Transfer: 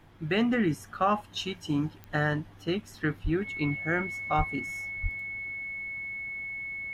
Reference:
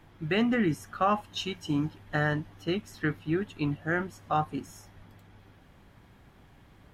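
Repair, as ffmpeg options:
-filter_complex "[0:a]adeclick=t=4,bandreject=f=2.2k:w=30,asplit=3[a][b][c];[a]afade=t=out:st=3.23:d=0.02[d];[b]highpass=f=140:w=0.5412,highpass=f=140:w=1.3066,afade=t=in:st=3.23:d=0.02,afade=t=out:st=3.35:d=0.02[e];[c]afade=t=in:st=3.35:d=0.02[f];[d][e][f]amix=inputs=3:normalize=0,asplit=3[g][h][i];[g]afade=t=out:st=4.37:d=0.02[j];[h]highpass=f=140:w=0.5412,highpass=f=140:w=1.3066,afade=t=in:st=4.37:d=0.02,afade=t=out:st=4.49:d=0.02[k];[i]afade=t=in:st=4.49:d=0.02[l];[j][k][l]amix=inputs=3:normalize=0,asplit=3[m][n][o];[m]afade=t=out:st=5.02:d=0.02[p];[n]highpass=f=140:w=0.5412,highpass=f=140:w=1.3066,afade=t=in:st=5.02:d=0.02,afade=t=out:st=5.14:d=0.02[q];[o]afade=t=in:st=5.14:d=0.02[r];[p][q][r]amix=inputs=3:normalize=0"

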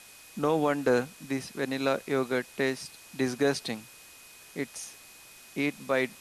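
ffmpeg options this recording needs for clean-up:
-af "adeclick=t=4,bandreject=f=2.5k:w=30,afwtdn=0.0032"

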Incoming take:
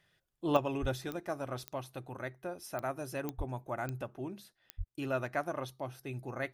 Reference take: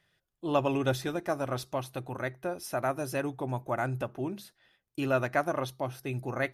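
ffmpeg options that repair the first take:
-filter_complex "[0:a]adeclick=t=4,asplit=3[a][b][c];[a]afade=t=out:st=0.81:d=0.02[d];[b]highpass=f=140:w=0.5412,highpass=f=140:w=1.3066,afade=t=in:st=0.81:d=0.02,afade=t=out:st=0.93:d=0.02[e];[c]afade=t=in:st=0.93:d=0.02[f];[d][e][f]amix=inputs=3:normalize=0,asplit=3[g][h][i];[g]afade=t=out:st=3.37:d=0.02[j];[h]highpass=f=140:w=0.5412,highpass=f=140:w=1.3066,afade=t=in:st=3.37:d=0.02,afade=t=out:st=3.49:d=0.02[k];[i]afade=t=in:st=3.49:d=0.02[l];[j][k][l]amix=inputs=3:normalize=0,asplit=3[m][n][o];[m]afade=t=out:st=4.77:d=0.02[p];[n]highpass=f=140:w=0.5412,highpass=f=140:w=1.3066,afade=t=in:st=4.77:d=0.02,afade=t=out:st=4.89:d=0.02[q];[o]afade=t=in:st=4.89:d=0.02[r];[p][q][r]amix=inputs=3:normalize=0,asetnsamples=n=441:p=0,asendcmd='0.57 volume volume 6.5dB',volume=0dB"

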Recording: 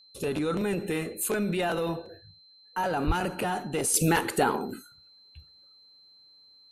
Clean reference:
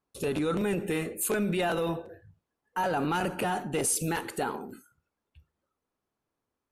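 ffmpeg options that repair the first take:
-filter_complex "[0:a]bandreject=f=4.1k:w=30,asplit=3[a][b][c];[a]afade=t=out:st=3.06:d=0.02[d];[b]highpass=f=140:w=0.5412,highpass=f=140:w=1.3066,afade=t=in:st=3.06:d=0.02,afade=t=out:st=3.18:d=0.02[e];[c]afade=t=in:st=3.18:d=0.02[f];[d][e][f]amix=inputs=3:normalize=0,asetnsamples=n=441:p=0,asendcmd='3.94 volume volume -7dB',volume=0dB"

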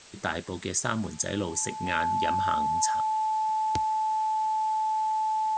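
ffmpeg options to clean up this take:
-af "bandreject=f=870:w=30,afwtdn=0.004"

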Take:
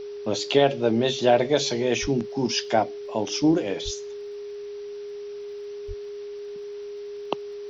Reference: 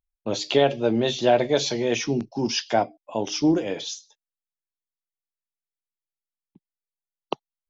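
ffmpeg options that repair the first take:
-filter_complex "[0:a]adeclick=t=4,bandreject=f=410:w=30,asplit=3[a][b][c];[a]afade=t=out:st=2.01:d=0.02[d];[b]highpass=f=140:w=0.5412,highpass=f=140:w=1.3066,afade=t=in:st=2.01:d=0.02,afade=t=out:st=2.13:d=0.02[e];[c]afade=t=in:st=2.13:d=0.02[f];[d][e][f]amix=inputs=3:normalize=0,asplit=3[g][h][i];[g]afade=t=out:st=3.84:d=0.02[j];[h]highpass=f=140:w=0.5412,highpass=f=140:w=1.3066,afade=t=in:st=3.84:d=0.02,afade=t=out:st=3.96:d=0.02[k];[i]afade=t=in:st=3.96:d=0.02[l];[j][k][l]amix=inputs=3:normalize=0,asplit=3[m][n][o];[m]afade=t=out:st=5.87:d=0.02[p];[n]highpass=f=140:w=0.5412,highpass=f=140:w=1.3066,afade=t=in:st=5.87:d=0.02,afade=t=out:st=5.99:d=0.02[q];[o]afade=t=in:st=5.99:d=0.02[r];[p][q][r]amix=inputs=3:normalize=0,afwtdn=0.0032"

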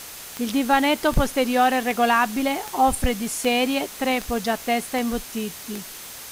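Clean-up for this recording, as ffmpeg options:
-af "adeclick=t=4,bandreject=f=6.3k:w=30,afwtdn=0.014"

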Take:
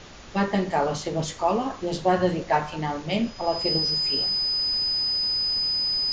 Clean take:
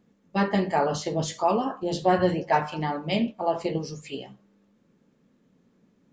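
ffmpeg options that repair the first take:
-af "bandreject=f=5k:w=30,afftdn=nr=25:nf=-39"

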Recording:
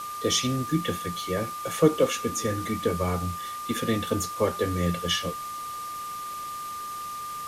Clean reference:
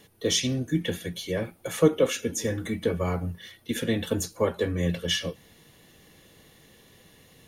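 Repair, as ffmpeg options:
-af "adeclick=t=4,bandreject=f=1.2k:w=30,afwtdn=0.0071"

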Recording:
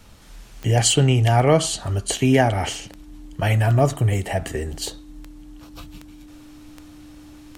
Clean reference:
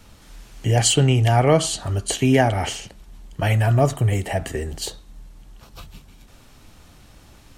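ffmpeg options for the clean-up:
-af "adeclick=t=4,bandreject=f=300:w=30"

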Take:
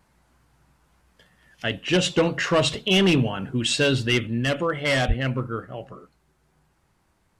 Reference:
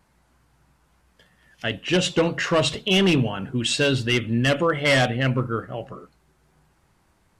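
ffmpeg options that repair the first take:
-filter_complex "[0:a]asplit=3[a][b][c];[a]afade=t=out:st=5.07:d=0.02[d];[b]highpass=f=140:w=0.5412,highpass=f=140:w=1.3066,afade=t=in:st=5.07:d=0.02,afade=t=out:st=5.19:d=0.02[e];[c]afade=t=in:st=5.19:d=0.02[f];[d][e][f]amix=inputs=3:normalize=0,asetnsamples=n=441:p=0,asendcmd='4.27 volume volume 3.5dB',volume=0dB"

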